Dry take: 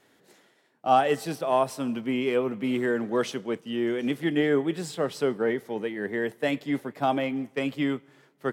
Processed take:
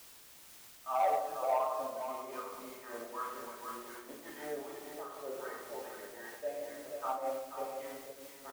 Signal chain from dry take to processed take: wah 2.6 Hz 540–1200 Hz, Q 6; shoebox room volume 1000 m³, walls mixed, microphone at 2.7 m; sample leveller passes 1; HPF 91 Hz 12 dB/oct; bell 240 Hz -7.5 dB 2.9 oct; requantised 8-bit, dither triangular; echo 0.484 s -7 dB; noise-modulated level, depth 60%; gain -5 dB

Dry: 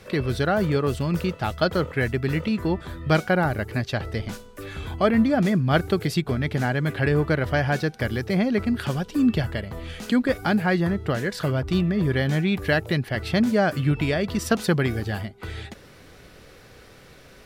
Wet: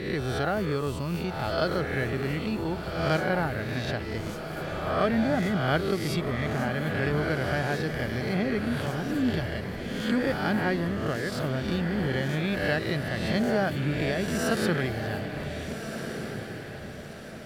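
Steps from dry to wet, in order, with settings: spectral swells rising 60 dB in 0.96 s; diffused feedback echo 1.526 s, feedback 43%, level -8 dB; gain -7.5 dB

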